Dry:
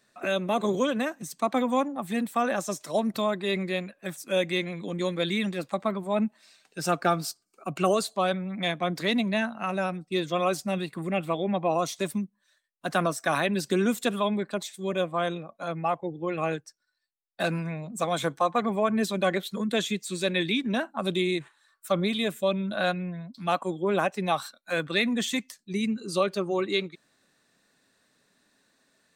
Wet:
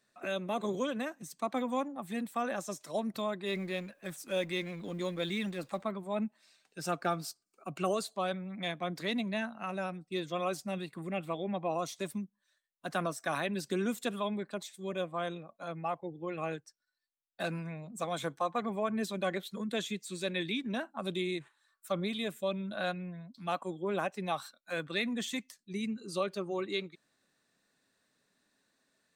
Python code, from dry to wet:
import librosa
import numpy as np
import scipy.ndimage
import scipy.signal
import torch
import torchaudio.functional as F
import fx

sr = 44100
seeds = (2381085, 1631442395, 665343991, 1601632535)

y = fx.law_mismatch(x, sr, coded='mu', at=(3.46, 5.83))
y = F.gain(torch.from_numpy(y), -8.0).numpy()